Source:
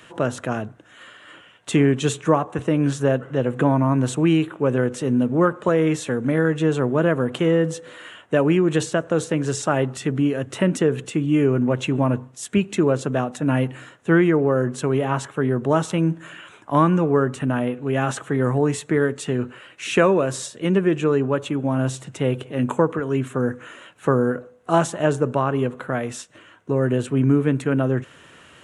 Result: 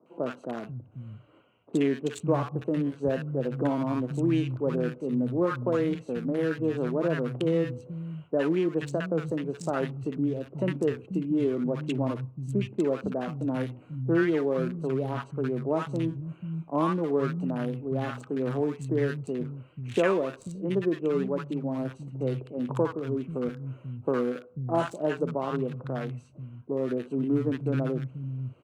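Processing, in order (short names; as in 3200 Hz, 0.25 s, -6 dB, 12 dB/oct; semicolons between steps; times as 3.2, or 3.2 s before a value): Wiener smoothing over 25 samples; three bands offset in time mids, highs, lows 60/490 ms, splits 170/1000 Hz; gain -6 dB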